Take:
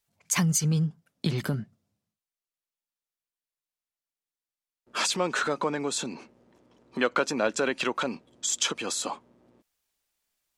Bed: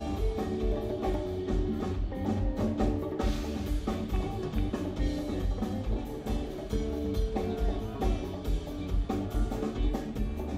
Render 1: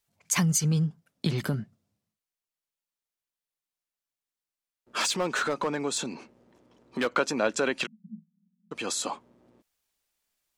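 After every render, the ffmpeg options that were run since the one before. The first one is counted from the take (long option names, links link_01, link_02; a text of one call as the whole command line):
ffmpeg -i in.wav -filter_complex "[0:a]asettb=1/sr,asplit=3[link_01][link_02][link_03];[link_01]atrim=end=5.004[link_04];[link_02]atrim=start=5:end=7.14,asetpts=PTS-STARTPTS,afade=type=in:duration=0.004:curve=qsin,afade=type=out:start_time=2.136:duration=0.004:curve=qsin,asoftclip=type=hard:threshold=-21dB[link_05];[link_03]atrim=start=7.136[link_06];[link_04][link_05]acrossfade=duration=0.004:curve1=hsin:curve2=qsin[link_07];[link_07][link_06]acrossfade=duration=0.004:curve1=qsin:curve2=hsin,asplit=3[link_08][link_09][link_10];[link_08]afade=type=out:start_time=7.85:duration=0.02[link_11];[link_09]asuperpass=centerf=190:order=12:qfactor=3.1,afade=type=in:start_time=7.85:duration=0.02,afade=type=out:start_time=8.71:duration=0.02[link_12];[link_10]afade=type=in:start_time=8.71:duration=0.02[link_13];[link_11][link_12][link_13]amix=inputs=3:normalize=0" out.wav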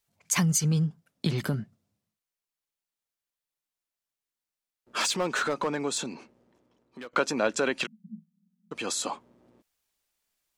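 ffmpeg -i in.wav -filter_complex "[0:a]asplit=2[link_01][link_02];[link_01]atrim=end=7.13,asetpts=PTS-STARTPTS,afade=type=out:start_time=5.89:duration=1.24:silence=0.125893[link_03];[link_02]atrim=start=7.13,asetpts=PTS-STARTPTS,afade=type=in:duration=0.004:curve=hsin:silence=0.125893[link_04];[link_03][link_04]concat=n=2:v=0:a=1" out.wav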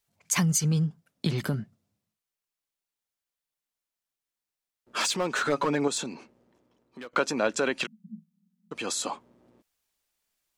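ffmpeg -i in.wav -filter_complex "[0:a]asettb=1/sr,asplit=3[link_01][link_02][link_03];[link_01]atrim=end=5.474[link_04];[link_02]atrim=start=5.47:end=5.88,asetpts=PTS-STARTPTS,afade=type=in:duration=0.004:curve=qsin,afade=type=out:start_time=0.406:duration=0.004:curve=qsin,aecho=1:1:7.2:0.97,atrim=end_sample=18081[link_05];[link_03]atrim=start=5.876[link_06];[link_04][link_05]acrossfade=duration=0.004:curve1=hsin:curve2=qsin[link_07];[link_07][link_06]acrossfade=duration=0.004:curve1=qsin:curve2=hsin" out.wav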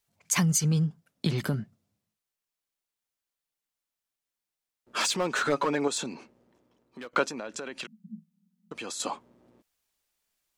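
ffmpeg -i in.wav -filter_complex "[0:a]asettb=1/sr,asplit=3[link_01][link_02][link_03];[link_01]atrim=end=5.584[link_04];[link_02]atrim=start=5.58:end=6.02,asetpts=PTS-STARTPTS,afade=type=in:duration=0.004:curve=qsin,afade=type=out:start_time=0.436:duration=0.004:curve=qsin,bass=frequency=250:gain=-6,treble=frequency=4000:gain=-1[link_05];[link_03]atrim=start=6.016[link_06];[link_04][link_05]acrossfade=duration=0.004:curve1=hsin:curve2=qsin[link_07];[link_07][link_06]acrossfade=duration=0.004:curve1=qsin:curve2=hsin,asettb=1/sr,asplit=3[link_08][link_09][link_10];[link_08]atrim=end=7.284[link_11];[link_09]atrim=start=7.28:end=9,asetpts=PTS-STARTPTS,afade=type=in:duration=0.004:curve=qsin,afade=type=out:start_time=1.716:duration=0.004:curve=qsin,acompressor=threshold=-33dB:ratio=8:attack=3.2:release=140:knee=1:detection=peak[link_12];[link_10]atrim=start=8.996[link_13];[link_11][link_12]acrossfade=duration=0.004:curve1=hsin:curve2=qsin[link_14];[link_14][link_13]acrossfade=duration=0.004:curve1=qsin:curve2=hsin" out.wav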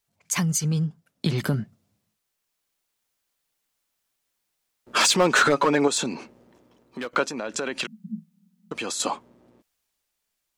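ffmpeg -i in.wav -af "dynaudnorm=framelen=210:gausssize=17:maxgain=11.5dB,alimiter=limit=-10dB:level=0:latency=1:release=435" out.wav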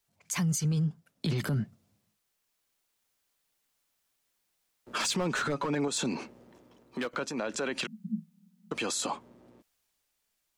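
ffmpeg -i in.wav -filter_complex "[0:a]acrossover=split=200[link_01][link_02];[link_02]acompressor=threshold=-27dB:ratio=6[link_03];[link_01][link_03]amix=inputs=2:normalize=0,alimiter=limit=-22.5dB:level=0:latency=1:release=14" out.wav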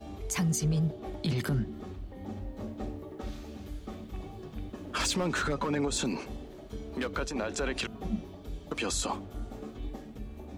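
ffmpeg -i in.wav -i bed.wav -filter_complex "[1:a]volume=-9.5dB[link_01];[0:a][link_01]amix=inputs=2:normalize=0" out.wav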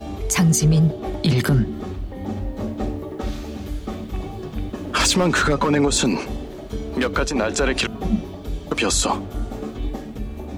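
ffmpeg -i in.wav -af "volume=12dB" out.wav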